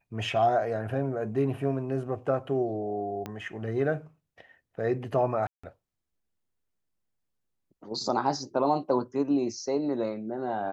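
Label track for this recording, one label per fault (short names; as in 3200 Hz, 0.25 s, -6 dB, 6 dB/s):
3.260000	3.260000	pop -21 dBFS
5.470000	5.630000	gap 0.165 s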